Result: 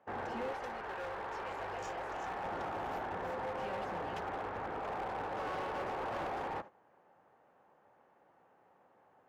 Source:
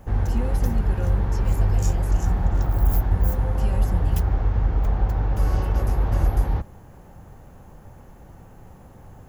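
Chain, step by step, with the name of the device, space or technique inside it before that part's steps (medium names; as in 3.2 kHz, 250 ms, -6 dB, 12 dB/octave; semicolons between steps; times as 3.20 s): walkie-talkie (band-pass 500–2400 Hz; hard clipper -34.5 dBFS, distortion -13 dB; gate -47 dBFS, range -12 dB); 0.52–2.43 s: peaking EQ 180 Hz -12.5 dB -> -6 dB 2 oct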